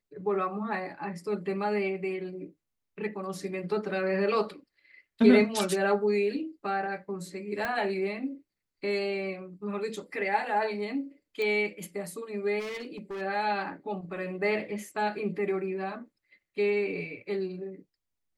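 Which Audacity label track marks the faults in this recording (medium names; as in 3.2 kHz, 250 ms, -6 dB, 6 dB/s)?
7.650000	7.650000	pop -17 dBFS
11.420000	11.420000	pop -21 dBFS
12.590000	13.220000	clipped -34 dBFS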